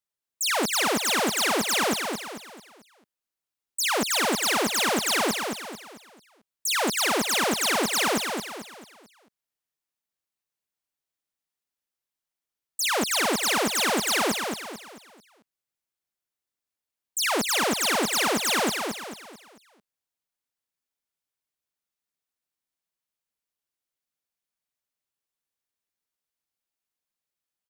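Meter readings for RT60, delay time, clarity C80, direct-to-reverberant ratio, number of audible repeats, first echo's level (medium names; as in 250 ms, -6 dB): no reverb, 221 ms, no reverb, no reverb, 4, -5.5 dB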